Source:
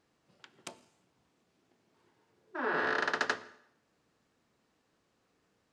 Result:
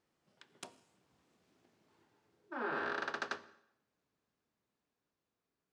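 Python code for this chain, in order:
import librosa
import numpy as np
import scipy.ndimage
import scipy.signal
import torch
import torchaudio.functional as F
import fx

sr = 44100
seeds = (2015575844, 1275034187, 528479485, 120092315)

y = fx.doppler_pass(x, sr, speed_mps=24, closest_m=17.0, pass_at_s=1.46)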